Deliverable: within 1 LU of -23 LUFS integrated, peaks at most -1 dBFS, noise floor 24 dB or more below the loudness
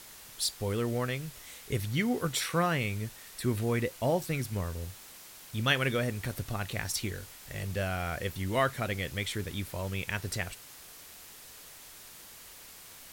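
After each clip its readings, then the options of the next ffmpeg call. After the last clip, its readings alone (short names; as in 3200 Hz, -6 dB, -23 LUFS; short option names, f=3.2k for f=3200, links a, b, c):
noise floor -50 dBFS; noise floor target -57 dBFS; loudness -32.5 LUFS; peak -11.5 dBFS; loudness target -23.0 LUFS
-> -af "afftdn=nr=7:nf=-50"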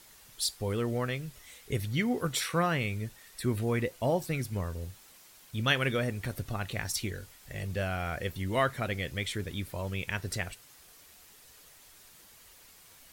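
noise floor -56 dBFS; noise floor target -57 dBFS
-> -af "afftdn=nr=6:nf=-56"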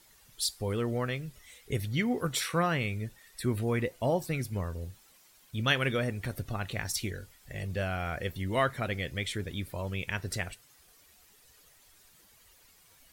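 noise floor -61 dBFS; loudness -32.5 LUFS; peak -11.5 dBFS; loudness target -23.0 LUFS
-> -af "volume=9.5dB"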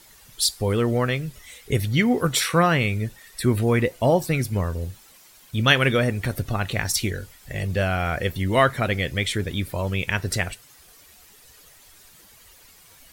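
loudness -23.0 LUFS; peak -2.0 dBFS; noise floor -52 dBFS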